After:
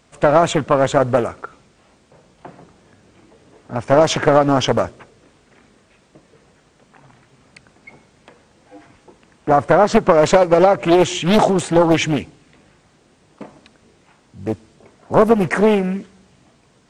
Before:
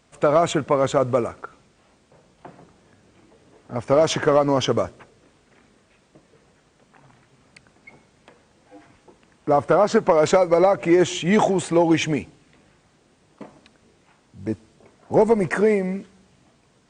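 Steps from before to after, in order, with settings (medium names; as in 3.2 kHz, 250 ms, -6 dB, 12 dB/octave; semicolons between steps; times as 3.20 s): loudspeaker Doppler distortion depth 0.75 ms; trim +4.5 dB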